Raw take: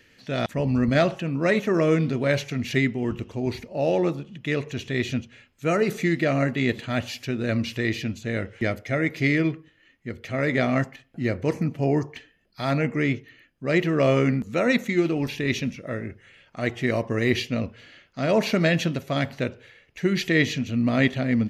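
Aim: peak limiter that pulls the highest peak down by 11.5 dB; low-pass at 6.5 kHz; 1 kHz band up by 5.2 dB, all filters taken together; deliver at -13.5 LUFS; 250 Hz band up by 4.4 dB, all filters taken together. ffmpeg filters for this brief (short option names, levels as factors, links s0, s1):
-af "lowpass=6500,equalizer=f=250:t=o:g=5,equalizer=f=1000:t=o:g=7.5,volume=4.22,alimiter=limit=0.708:level=0:latency=1"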